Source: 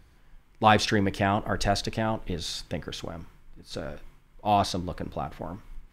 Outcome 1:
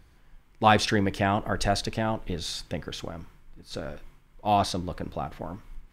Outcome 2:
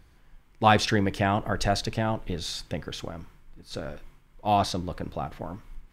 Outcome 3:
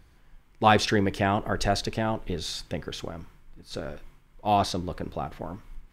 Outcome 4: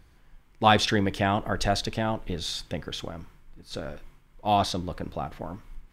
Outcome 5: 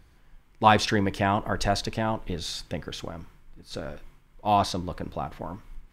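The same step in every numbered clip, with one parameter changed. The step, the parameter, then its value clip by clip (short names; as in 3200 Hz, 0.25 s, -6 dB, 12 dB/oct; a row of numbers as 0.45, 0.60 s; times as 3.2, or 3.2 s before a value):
dynamic EQ, frequency: 9100, 120, 390, 3400, 990 Hz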